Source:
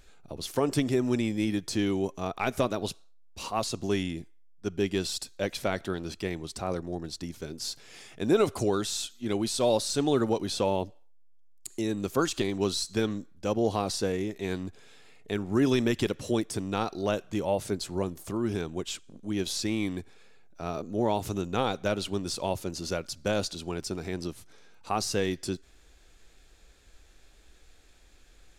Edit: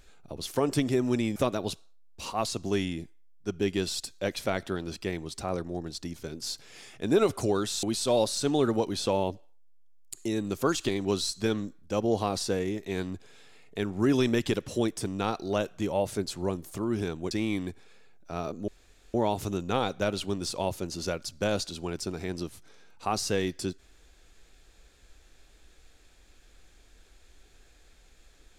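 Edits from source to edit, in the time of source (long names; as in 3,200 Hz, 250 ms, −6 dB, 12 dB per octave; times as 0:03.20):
0:01.36–0:02.54: remove
0:09.01–0:09.36: remove
0:18.84–0:19.61: remove
0:20.98: splice in room tone 0.46 s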